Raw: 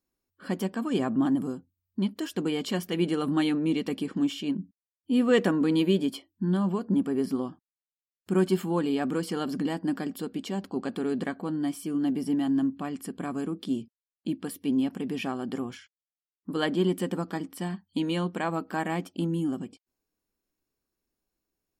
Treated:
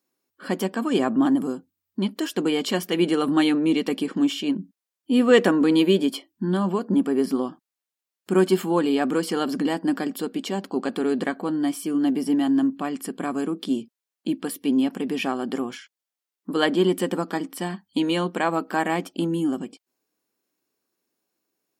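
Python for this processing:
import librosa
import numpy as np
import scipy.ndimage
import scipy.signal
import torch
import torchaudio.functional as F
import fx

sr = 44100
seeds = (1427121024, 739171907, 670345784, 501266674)

y = scipy.signal.sosfilt(scipy.signal.butter(2, 240.0, 'highpass', fs=sr, output='sos'), x)
y = y * 10.0 ** (7.0 / 20.0)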